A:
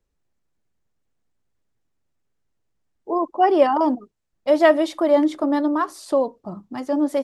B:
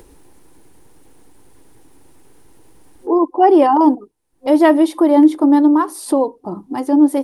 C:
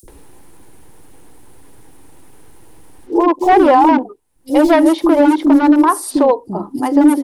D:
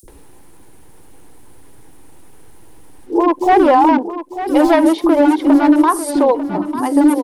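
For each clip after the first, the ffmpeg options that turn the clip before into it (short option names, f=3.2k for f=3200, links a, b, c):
-filter_complex "[0:a]superequalizer=6b=3.16:7b=2.24:9b=2.24:16b=3.55,asplit=2[a][b];[b]acompressor=mode=upward:threshold=-12dB:ratio=2.5,volume=-2dB[c];[a][c]amix=inputs=2:normalize=0,volume=-5dB"
-filter_complex "[0:a]asoftclip=type=hard:threshold=-8dB,acrossover=split=330|5400[a][b][c];[a]adelay=30[d];[b]adelay=80[e];[d][e][c]amix=inputs=3:normalize=0,alimiter=level_in=7dB:limit=-1dB:release=50:level=0:latency=1,volume=-1dB"
-af "aecho=1:1:896|1792|2688:0.251|0.0703|0.0197,volume=-1dB"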